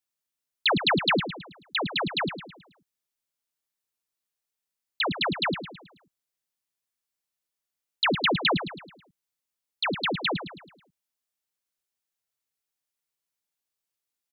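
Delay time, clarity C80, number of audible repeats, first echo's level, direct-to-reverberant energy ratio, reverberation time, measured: 0.108 s, none, 4, -10.5 dB, none, none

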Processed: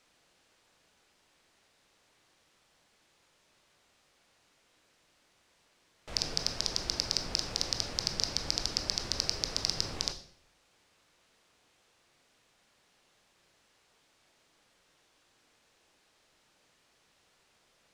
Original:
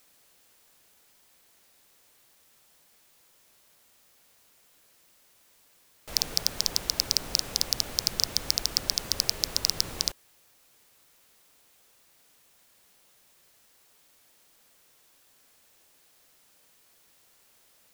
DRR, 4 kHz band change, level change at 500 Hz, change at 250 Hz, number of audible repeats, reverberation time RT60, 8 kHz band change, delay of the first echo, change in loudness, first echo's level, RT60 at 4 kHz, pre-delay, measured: 7.5 dB, -4.5 dB, -1.0 dB, -0.5 dB, none, 0.55 s, -6.5 dB, none, -5.0 dB, none, 0.50 s, 17 ms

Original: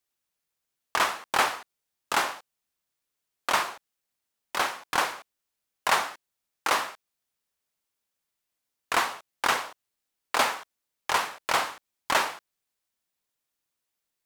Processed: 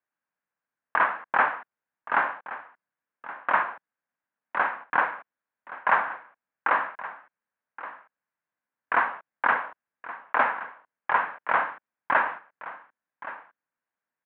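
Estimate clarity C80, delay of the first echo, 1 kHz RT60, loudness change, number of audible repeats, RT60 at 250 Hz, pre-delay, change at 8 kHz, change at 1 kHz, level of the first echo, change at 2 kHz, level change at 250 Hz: none, 1.122 s, none, +1.5 dB, 1, none, none, under -40 dB, +2.5 dB, -15.5 dB, +3.5 dB, -2.0 dB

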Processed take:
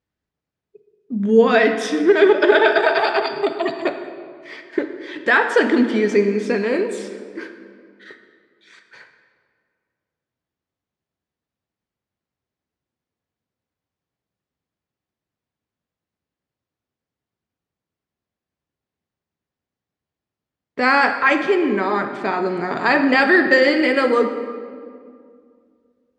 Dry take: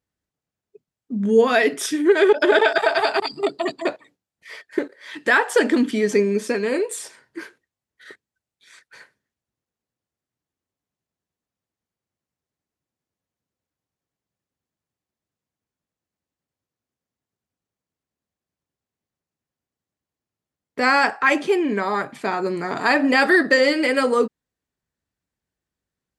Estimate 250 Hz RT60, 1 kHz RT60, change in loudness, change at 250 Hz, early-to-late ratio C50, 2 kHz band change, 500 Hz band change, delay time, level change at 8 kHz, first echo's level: 2.7 s, 2.0 s, +2.0 dB, +2.5 dB, 8.0 dB, +2.0 dB, +2.5 dB, none, -7.5 dB, none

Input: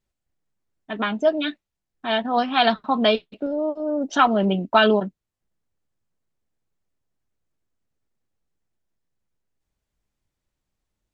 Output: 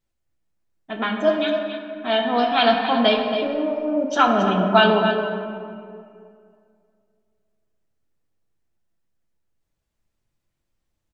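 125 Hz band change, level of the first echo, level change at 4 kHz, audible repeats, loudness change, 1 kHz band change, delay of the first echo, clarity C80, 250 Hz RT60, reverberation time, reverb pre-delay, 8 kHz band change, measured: +2.0 dB, -10.5 dB, +2.0 dB, 1, +1.5 dB, +2.0 dB, 0.275 s, 3.5 dB, 2.5 s, 2.3 s, 6 ms, n/a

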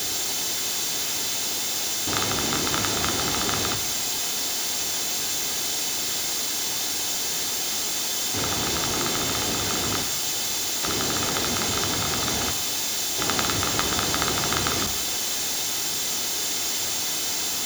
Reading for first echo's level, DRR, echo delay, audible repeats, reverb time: none, 8.0 dB, none, none, 1.0 s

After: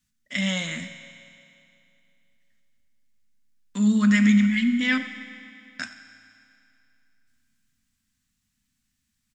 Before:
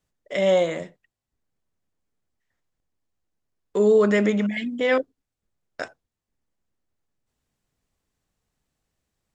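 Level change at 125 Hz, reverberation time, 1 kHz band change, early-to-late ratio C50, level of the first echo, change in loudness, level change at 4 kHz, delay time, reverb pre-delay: n/a, 2.7 s, -7.0 dB, 9.0 dB, -17.5 dB, 0.0 dB, +4.5 dB, 91 ms, 7 ms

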